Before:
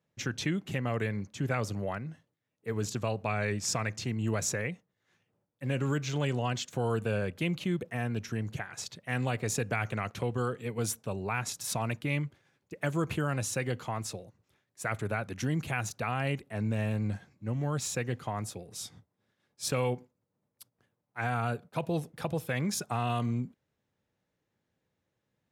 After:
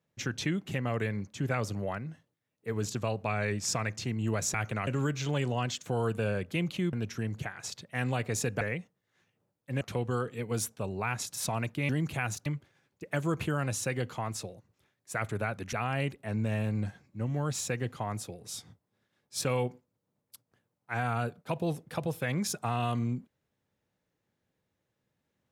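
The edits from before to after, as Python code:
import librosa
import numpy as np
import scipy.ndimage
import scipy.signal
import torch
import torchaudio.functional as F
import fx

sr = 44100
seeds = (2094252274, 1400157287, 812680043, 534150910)

y = fx.edit(x, sr, fx.swap(start_s=4.54, length_s=1.2, other_s=9.75, other_length_s=0.33),
    fx.cut(start_s=7.8, length_s=0.27),
    fx.move(start_s=15.43, length_s=0.57, to_s=12.16), tone=tone)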